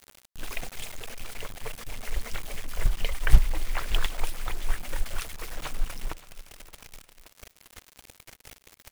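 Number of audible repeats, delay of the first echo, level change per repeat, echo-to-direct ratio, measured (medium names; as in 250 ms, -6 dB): 2, 571 ms, -5.0 dB, -17.5 dB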